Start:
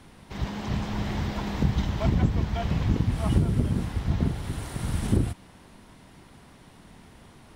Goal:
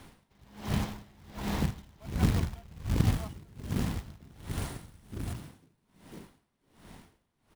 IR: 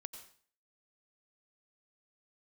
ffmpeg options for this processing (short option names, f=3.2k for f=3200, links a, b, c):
-filter_complex "[0:a]asettb=1/sr,asplit=3[a][b][c];[a]atrim=end=2.424[d];[b]atrim=start=2.42:end=3.01,asetpts=PTS-STARTPTS,afade=t=in:d=0.004:c=qsin,afade=t=out:st=0.586:d=0.004:c=qsin,lowshelf=f=140:g=8.5[e];[c]atrim=start=3.006[f];[d][e]acrossfade=d=0.004:c1=hsin:c2=qsin[g];[g][f]acrossfade=d=0.004:c1=qsin:c2=hsin,bandreject=f=60:t=h:w=6,bandreject=f=120:t=h:w=6,bandreject=f=180:t=h:w=6,bandreject=f=240:t=h:w=6,bandreject=f=300:t=h:w=6,bandreject=f=360:t=h:w=6,asplit=2[h][i];[i]asplit=4[j][k][l][m];[j]adelay=500,afreqshift=58,volume=-19dB[n];[k]adelay=1000,afreqshift=116,volume=-25.6dB[o];[l]adelay=1500,afreqshift=174,volume=-32.1dB[p];[m]adelay=2000,afreqshift=232,volume=-38.7dB[q];[n][o][p][q]amix=inputs=4:normalize=0[r];[h][r]amix=inputs=2:normalize=0,acrusher=bits=3:mode=log:mix=0:aa=0.000001,aeval=exprs='val(0)*pow(10,-29*(0.5-0.5*cos(2*PI*1.3*n/s))/20)':c=same"